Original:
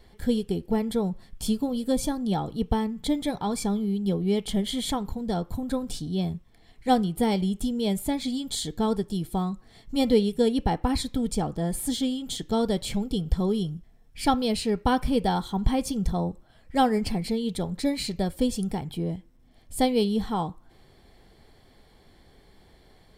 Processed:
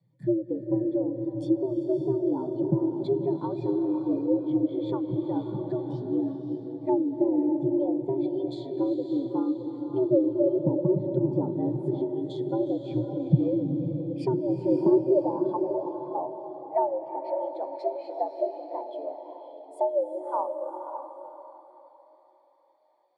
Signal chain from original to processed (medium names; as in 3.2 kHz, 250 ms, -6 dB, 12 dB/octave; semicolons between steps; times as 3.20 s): low-pass that closes with the level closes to 480 Hz, closed at -20 dBFS; gated-style reverb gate 420 ms rising, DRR 6.5 dB; frequency shift +110 Hz; high-pass sweep 72 Hz -> 690 Hz, 14.30–15.32 s; on a send: echo that smears into a reverb 574 ms, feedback 46%, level -4 dB; on the sum: spectral contrast expander 1.5:1